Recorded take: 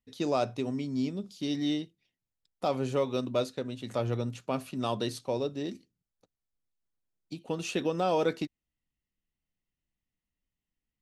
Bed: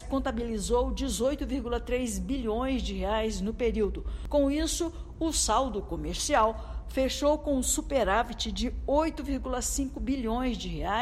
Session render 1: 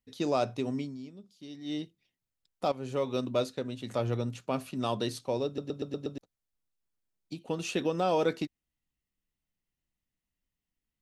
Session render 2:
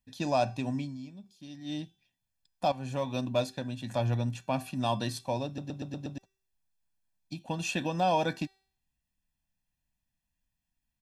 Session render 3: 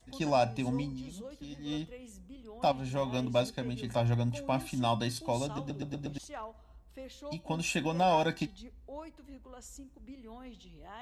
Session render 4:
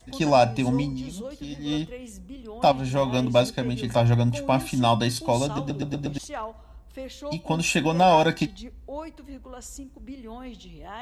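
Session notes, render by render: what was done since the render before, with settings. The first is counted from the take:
0.8–1.82 dip -13.5 dB, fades 0.18 s; 2.72–3.29 fade in equal-power, from -13.5 dB; 5.46 stutter in place 0.12 s, 6 plays
comb 1.2 ms, depth 78%; de-hum 385.4 Hz, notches 35
add bed -19 dB
gain +9 dB

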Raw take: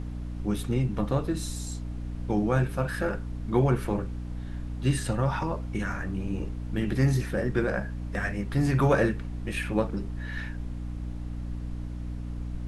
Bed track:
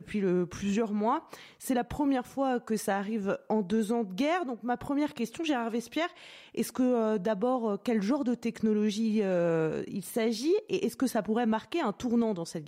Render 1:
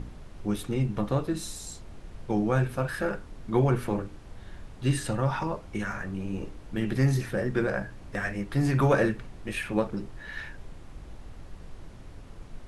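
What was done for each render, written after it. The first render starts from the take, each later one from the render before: de-hum 60 Hz, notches 5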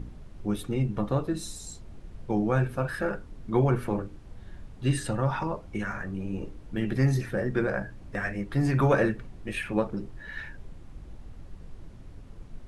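denoiser 6 dB, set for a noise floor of -46 dBFS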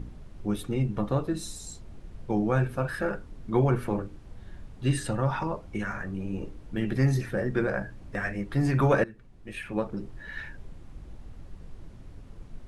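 9.04–10.13 fade in, from -21 dB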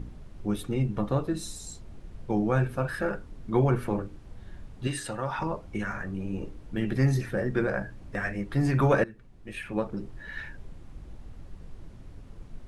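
4.87–5.39 low shelf 300 Hz -11.5 dB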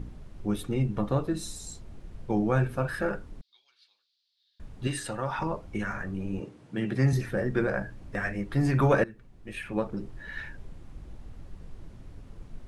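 3.41–4.6 Butterworth band-pass 4200 Hz, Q 3.2; 6.4–7.13 Chebyshev band-pass 120–9800 Hz, order 3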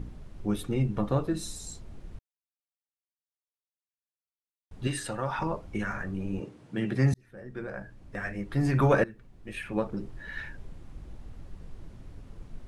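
2.19–4.71 mute; 7.14–8.84 fade in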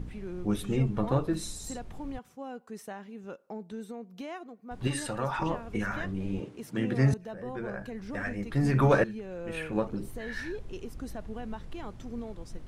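add bed track -12 dB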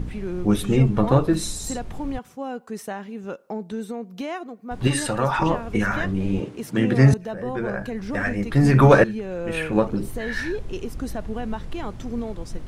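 gain +9.5 dB; limiter -1 dBFS, peak gain reduction 1 dB

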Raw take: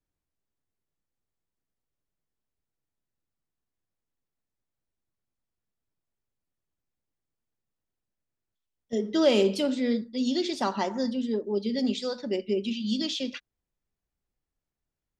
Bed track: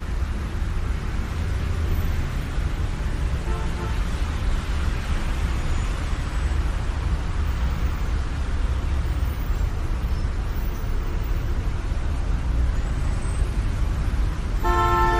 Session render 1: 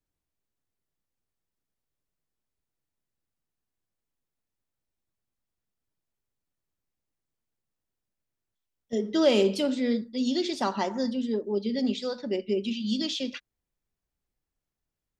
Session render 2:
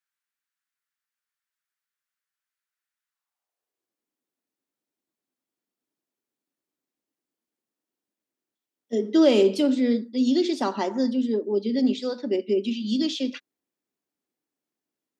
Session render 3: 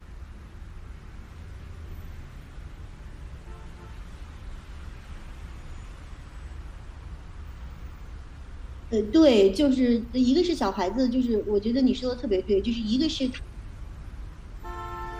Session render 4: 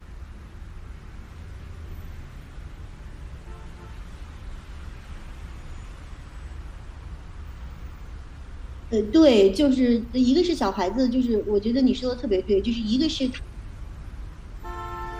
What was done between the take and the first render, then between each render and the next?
11.55–12.48 air absorption 53 m
high-pass sweep 1500 Hz -> 280 Hz, 3.03–3.97
add bed track -16.5 dB
gain +2 dB

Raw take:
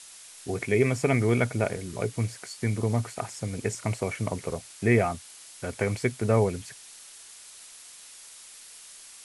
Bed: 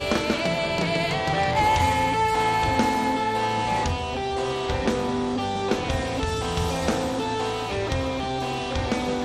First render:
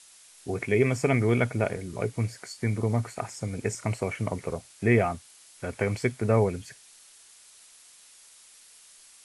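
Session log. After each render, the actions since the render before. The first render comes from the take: noise print and reduce 6 dB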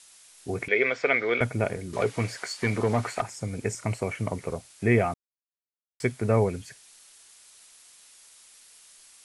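0.68–1.41 speaker cabinet 470–4900 Hz, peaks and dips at 510 Hz +7 dB, 880 Hz -3 dB, 1500 Hz +9 dB, 2100 Hz +8 dB, 3600 Hz +9 dB; 1.93–3.22 overdrive pedal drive 18 dB, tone 2900 Hz, clips at -13 dBFS; 5.14–6 mute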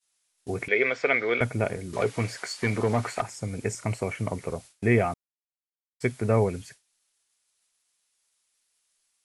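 expander -40 dBFS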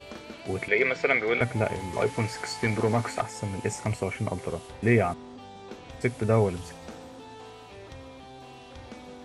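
add bed -18.5 dB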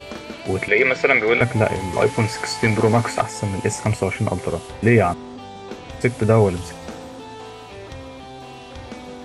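gain +8.5 dB; limiter -3 dBFS, peak gain reduction 3 dB

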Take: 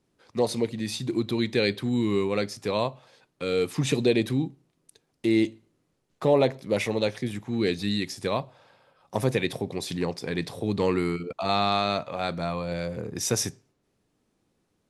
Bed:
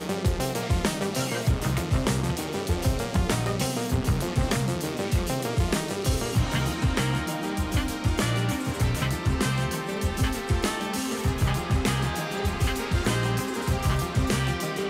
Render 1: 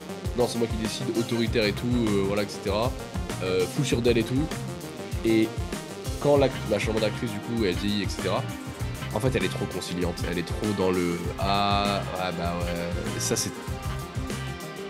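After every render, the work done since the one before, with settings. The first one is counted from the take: add bed -7 dB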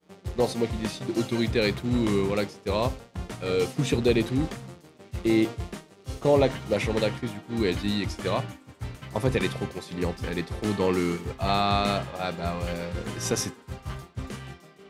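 expander -25 dBFS; high shelf 6600 Hz -4.5 dB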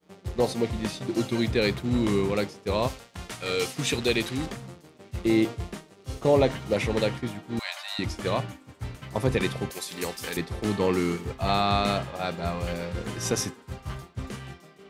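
2.87–4.46 tilt shelf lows -6 dB, about 930 Hz; 7.59–7.99 brick-wall FIR high-pass 560 Hz; 9.7–10.37 RIAA curve recording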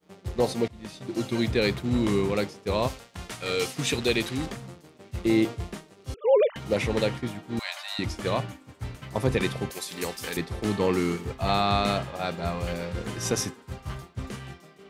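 0.68–1.4 fade in, from -21 dB; 6.14–6.56 sine-wave speech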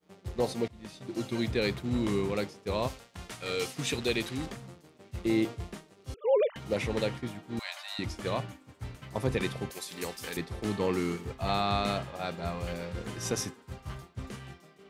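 gain -5 dB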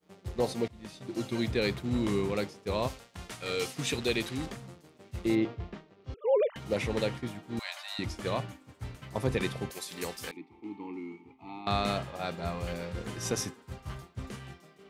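5.35–6.52 air absorption 210 m; 10.31–11.67 vowel filter u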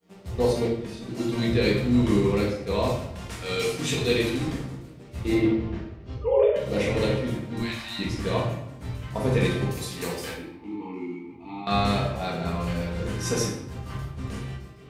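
shoebox room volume 220 m³, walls mixed, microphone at 1.7 m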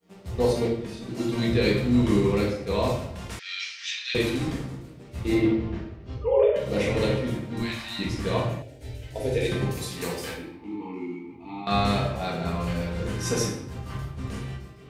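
3.39–4.15 Chebyshev band-pass 1700–5800 Hz, order 3; 8.62–9.52 fixed phaser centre 460 Hz, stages 4

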